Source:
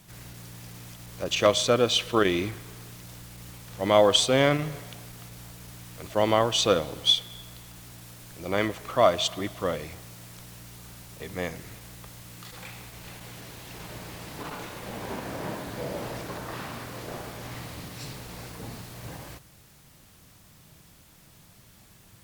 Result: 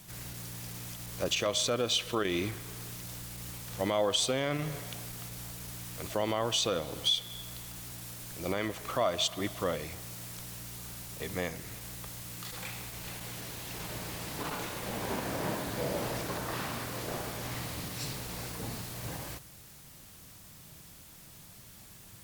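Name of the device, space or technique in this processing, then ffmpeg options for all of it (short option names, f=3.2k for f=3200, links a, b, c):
stacked limiters: -af "highshelf=f=4.8k:g=5.5,alimiter=limit=-11dB:level=0:latency=1:release=55,alimiter=limit=-14.5dB:level=0:latency=1:release=188,alimiter=limit=-18.5dB:level=0:latency=1:release=444"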